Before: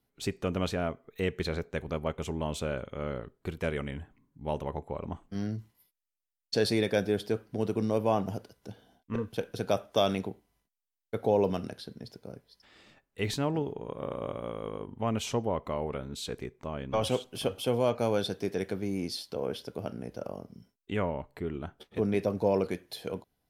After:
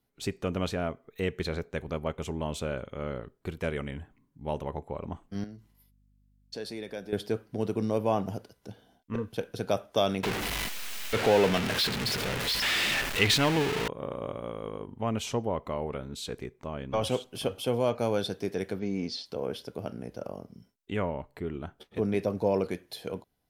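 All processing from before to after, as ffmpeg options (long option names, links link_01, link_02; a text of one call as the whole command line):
ffmpeg -i in.wav -filter_complex "[0:a]asettb=1/sr,asplit=3[link_01][link_02][link_03];[link_01]atrim=end=5.444[link_04];[link_02]atrim=start=5.44:end=7.13,asetpts=PTS-STARTPTS,afade=type=in:duration=0.004:curve=qsin,afade=type=out:start_time=1.686:duration=0.004:curve=qsin,acompressor=threshold=-53dB:ratio=1.5:attack=3.2:release=140:knee=1:detection=peak,highpass=150,aeval=exprs='val(0)+0.000631*(sin(2*PI*50*n/s)+sin(2*PI*2*50*n/s)/2+sin(2*PI*3*50*n/s)/3+sin(2*PI*4*50*n/s)/4+sin(2*PI*5*50*n/s)/5)':channel_layout=same[link_05];[link_03]atrim=start=7.126[link_06];[link_04][link_05]acrossfade=duration=0.004:curve1=hsin:curve2=qsin[link_07];[link_07][link_06]acrossfade=duration=0.004:curve1=qsin:curve2=hsin,asettb=1/sr,asplit=3[link_08][link_09][link_10];[link_08]atrim=end=10.234[link_11];[link_09]atrim=start=10.23:end=13.88,asetpts=PTS-STARTPTS,afade=type=in:duration=0.004:curve=qsin,afade=type=out:start_time=3.646:duration=0.004:curve=qsin,aeval=exprs='val(0)+0.5*0.0355*sgn(val(0))':channel_layout=same,equalizer=frequency=2600:width_type=o:width=2.1:gain=11[link_12];[link_10]atrim=start=13.876[link_13];[link_11][link_12]acrossfade=duration=0.004:curve1=hsin:curve2=qsin[link_14];[link_14][link_13]acrossfade=duration=0.004:curve1=qsin:curve2=hsin,asettb=1/sr,asplit=3[link_15][link_16][link_17];[link_15]atrim=end=18.794[link_18];[link_16]atrim=start=18.79:end=19.26,asetpts=PTS-STARTPTS,afade=type=in:duration=0.004:curve=qsin,afade=type=out:start_time=0.466:duration=0.004:curve=qsin,lowpass=frequency=6200:width=0.5412,lowpass=frequency=6200:width=1.3066,aecho=1:1:4.4:0.39,atrim=end_sample=20727[link_19];[link_17]atrim=start=19.256[link_20];[link_18][link_19]acrossfade=duration=0.004:curve1=hsin:curve2=qsin[link_21];[link_21][link_20]acrossfade=duration=0.004:curve1=qsin:curve2=hsin" out.wav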